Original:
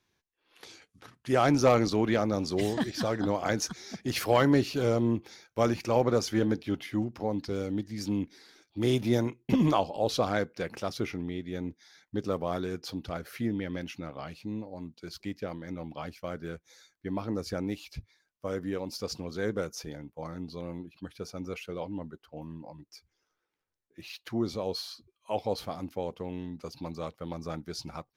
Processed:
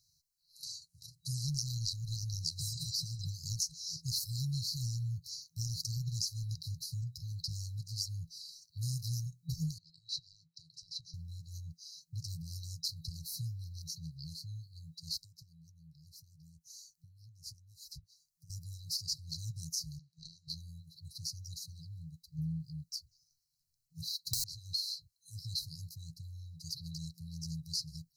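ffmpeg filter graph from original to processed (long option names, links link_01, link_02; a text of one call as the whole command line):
ffmpeg -i in.wav -filter_complex "[0:a]asettb=1/sr,asplit=3[link_01][link_02][link_03];[link_01]atrim=end=9.784[link_04];[link_02]atrim=start=9.78:end=11.14,asetpts=PTS-STARTPTS,afade=type=in:duration=0.004:curve=qsin,afade=type=out:start_time=1.356:duration=0.004:curve=qsin,highpass=350,lowpass=3000,acompressor=threshold=-35dB:ratio=16:attack=3.2:release=140:knee=1:detection=peak[link_05];[link_03]atrim=start=11.136[link_06];[link_04][link_05]acrossfade=duration=0.004:curve1=hsin:curve2=qsin[link_07];[link_07][link_06]acrossfade=duration=0.004:curve1=qsin:curve2=hsin,asettb=1/sr,asplit=3[link_08][link_09][link_10];[link_08]atrim=end=15.174[link_11];[link_09]atrim=start=15.17:end=18.5,asetpts=PTS-STARTPTS,afade=type=in:duration=0.004:curve=qsin,afade=type=out:start_time=3.326:duration=0.004:curve=qsin,equalizer=frequency=4200:width_type=o:width=0.55:gain=-5.5,acompressor=threshold=-53dB:ratio=3:attack=3.2:release=140:knee=1:detection=peak[link_12];[link_10]atrim=start=18.496[link_13];[link_11][link_12]acrossfade=duration=0.004:curve1=hsin:curve2=qsin[link_14];[link_14][link_13]acrossfade=duration=0.004:curve1=qsin:curve2=hsin,asettb=1/sr,asplit=3[link_15][link_16][link_17];[link_15]atrim=end=19.994[link_18];[link_16]atrim=start=19.99:end=20.48,asetpts=PTS-STARTPTS,afade=type=in:duration=0.004:curve=qsin,afade=type=out:start_time=0.486:duration=0.004:curve=qsin,highpass=650,lowpass=2900,aeval=exprs='0.0299*sin(PI/2*2.24*val(0)/0.0299)':channel_layout=same[link_19];[link_17]atrim=start=20.476[link_20];[link_18][link_19]acrossfade=duration=0.004:curve1=hsin:curve2=qsin[link_21];[link_21][link_20]acrossfade=duration=0.004:curve1=qsin:curve2=hsin,asettb=1/sr,asplit=3[link_22][link_23][link_24];[link_22]atrim=end=22.384[link_25];[link_23]atrim=start=22.38:end=24.44,asetpts=PTS-STARTPTS,afade=type=in:duration=0.004:curve=qsin,afade=type=out:start_time=2.056:duration=0.004:curve=qsin,equalizer=frequency=370:width=0.44:gain=13,aeval=exprs='(mod(9.44*val(0)+1,2)-1)/9.44':channel_layout=same,aphaser=in_gain=1:out_gain=1:delay=2.2:decay=0.33:speed=1.3:type=sinusoidal[link_26];[link_24]atrim=start=24.436[link_27];[link_25][link_26]acrossfade=duration=0.004:curve1=hsin:curve2=qsin[link_28];[link_28][link_27]acrossfade=duration=0.004:curve1=qsin:curve2=hsin,afftfilt=real='re*(1-between(b*sr/4096,170,3900))':imag='im*(1-between(b*sr/4096,170,3900))':win_size=4096:overlap=0.75,bass=frequency=250:gain=-11,treble=frequency=4000:gain=-3,acompressor=threshold=-46dB:ratio=4,volume=12dB" out.wav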